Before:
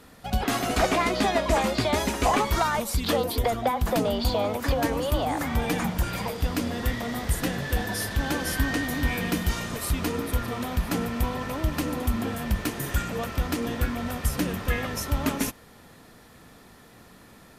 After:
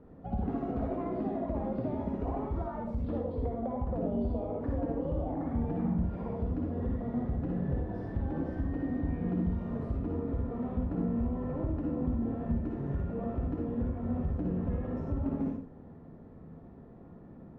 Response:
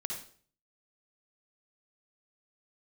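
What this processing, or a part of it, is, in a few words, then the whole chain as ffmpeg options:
television next door: -filter_complex "[0:a]acompressor=threshold=0.0316:ratio=6,lowpass=540[s0];[1:a]atrim=start_sample=2205[s1];[s0][s1]afir=irnorm=-1:irlink=0,volume=1.19"

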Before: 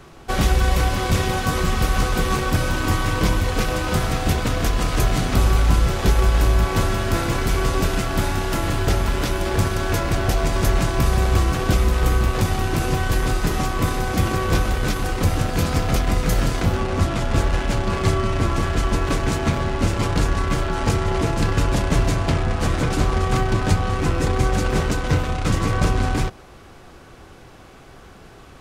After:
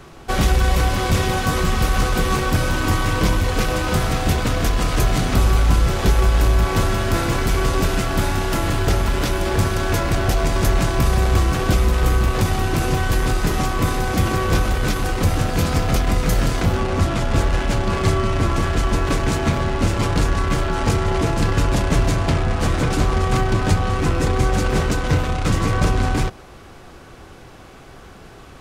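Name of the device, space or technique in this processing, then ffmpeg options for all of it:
parallel distortion: -filter_complex "[0:a]asplit=2[s0][s1];[s1]asoftclip=type=hard:threshold=0.0841,volume=0.335[s2];[s0][s2]amix=inputs=2:normalize=0"

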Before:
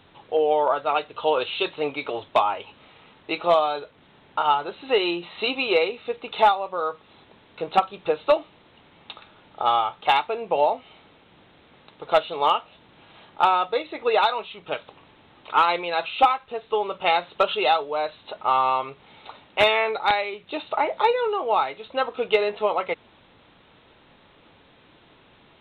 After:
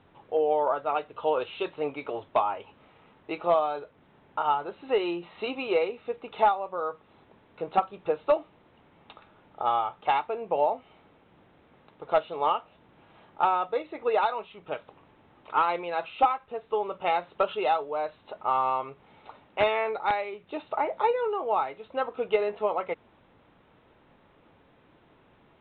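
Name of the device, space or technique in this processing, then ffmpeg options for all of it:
phone in a pocket: -af "lowpass=3100,highshelf=f=2400:g=-9.5,volume=0.668"

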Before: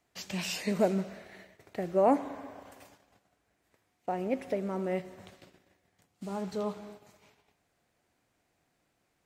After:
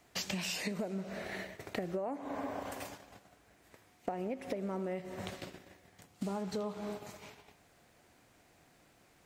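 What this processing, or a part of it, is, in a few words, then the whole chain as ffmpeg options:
serial compression, leveller first: -af "acompressor=threshold=0.0224:ratio=2.5,acompressor=threshold=0.00562:ratio=8,volume=3.35"

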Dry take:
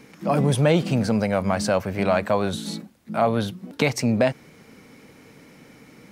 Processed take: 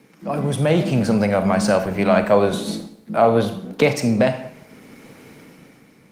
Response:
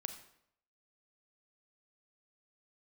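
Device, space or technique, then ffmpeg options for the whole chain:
far-field microphone of a smart speaker: -filter_complex "[0:a]asettb=1/sr,asplit=3[s0][s1][s2];[s0]atrim=end=2.314[s3];[s1]atrim=start=2.31:end=3.97,asetpts=PTS-STARTPTS,afade=t=in:d=0.004:c=qsin,afade=t=out:st=1.656:d=0.004:c=qsin,equalizer=f=470:w=1.4:g=5.5[s4];[s2]atrim=start=3.966[s5];[s3][s4]acrossfade=d=0.004:c1=hsin:c2=qsin[s6];[s6][s5]acrossfade=d=0.004:c1=qsin:c2=hsin[s7];[1:a]atrim=start_sample=2205[s8];[s7][s8]afir=irnorm=-1:irlink=0,highpass=f=100:w=0.5412,highpass=f=100:w=1.3066,dynaudnorm=f=110:g=13:m=3.55,volume=0.891" -ar 48000 -c:a libopus -b:a 24k

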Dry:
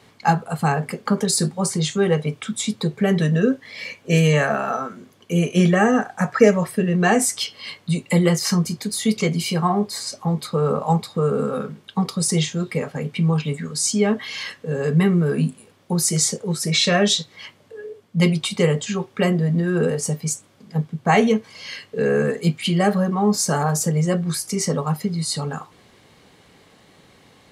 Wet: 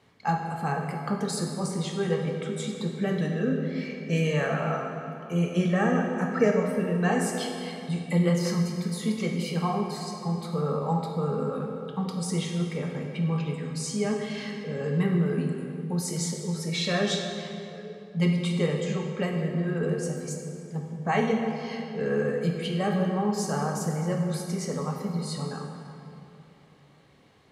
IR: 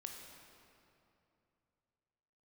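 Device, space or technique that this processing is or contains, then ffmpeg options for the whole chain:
swimming-pool hall: -filter_complex "[1:a]atrim=start_sample=2205[s0];[0:a][s0]afir=irnorm=-1:irlink=0,highshelf=f=4400:g=-7,volume=0.668"

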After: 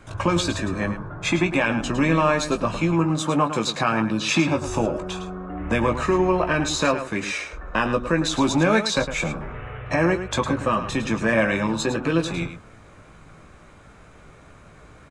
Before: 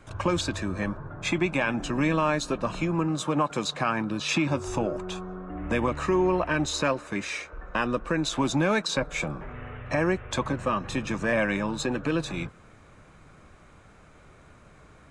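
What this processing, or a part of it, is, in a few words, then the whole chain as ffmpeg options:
slapback doubling: -filter_complex "[0:a]asplit=3[s0][s1][s2];[s1]adelay=18,volume=0.422[s3];[s2]adelay=108,volume=0.316[s4];[s0][s3][s4]amix=inputs=3:normalize=0,volume=1.58"

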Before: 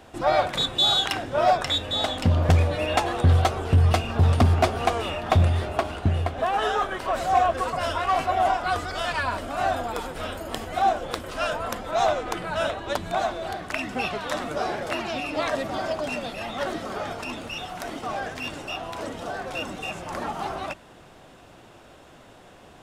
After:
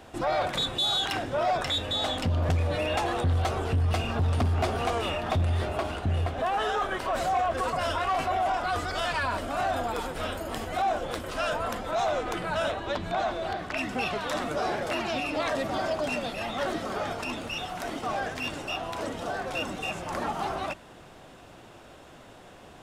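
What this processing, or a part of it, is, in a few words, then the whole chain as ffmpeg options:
soft clipper into limiter: -filter_complex "[0:a]asettb=1/sr,asplit=3[s0][s1][s2];[s0]atrim=end=12.724[s3];[s1]atrim=start=12.72:end=13.77,asetpts=PTS-STARTPTS,afade=t=in:d=0.004:c=qsin,afade=t=out:st=1.046:d=0.004:c=qsin,acrossover=split=5400[s4][s5];[s5]acompressor=threshold=0.00126:ratio=4:attack=1:release=60[s6];[s4][s6]amix=inputs=2:normalize=0[s7];[s2]atrim=start=13.766[s8];[s3][s7]acrossfade=d=0.004:c1=hsin:c2=qsin[s9];[s9][s8]acrossfade=d=0.004:c1=qsin:c2=hsin,asoftclip=type=tanh:threshold=0.211,alimiter=limit=0.0944:level=0:latency=1:release=12"

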